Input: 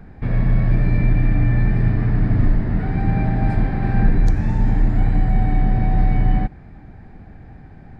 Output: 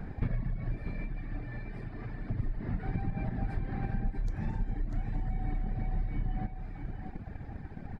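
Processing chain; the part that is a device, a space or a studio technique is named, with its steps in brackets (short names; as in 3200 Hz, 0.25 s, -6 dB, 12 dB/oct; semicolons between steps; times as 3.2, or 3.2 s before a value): drum-bus smash (transient shaper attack +7 dB, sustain +2 dB; compressor 10:1, threshold -25 dBFS, peak gain reduction 19.5 dB; soft clip -18.5 dBFS, distortion -24 dB); reverb removal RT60 1.8 s; 0.77–2.3 tone controls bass -8 dB, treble +4 dB; echo 0.644 s -7.5 dB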